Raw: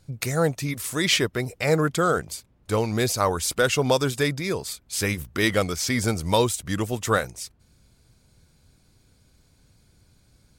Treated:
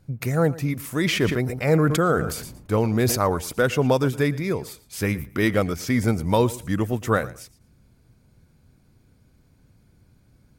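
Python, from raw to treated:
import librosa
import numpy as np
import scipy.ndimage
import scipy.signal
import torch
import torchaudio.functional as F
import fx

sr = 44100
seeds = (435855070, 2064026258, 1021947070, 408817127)

y = fx.graphic_eq(x, sr, hz=(125, 250, 4000, 8000), db=(3, 4, -7, -8))
y = fx.echo_feedback(y, sr, ms=115, feedback_pct=20, wet_db=-19)
y = fx.sustainer(y, sr, db_per_s=56.0, at=(0.93, 3.37))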